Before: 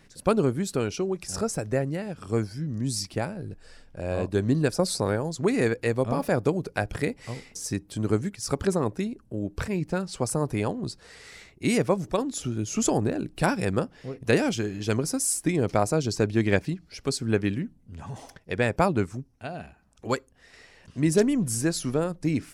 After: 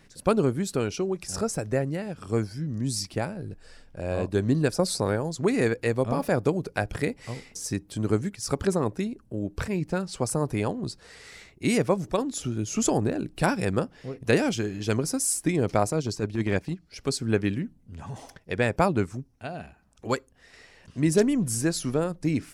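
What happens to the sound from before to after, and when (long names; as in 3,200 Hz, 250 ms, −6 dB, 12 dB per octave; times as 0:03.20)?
0:15.90–0:16.96: transient designer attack −10 dB, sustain −5 dB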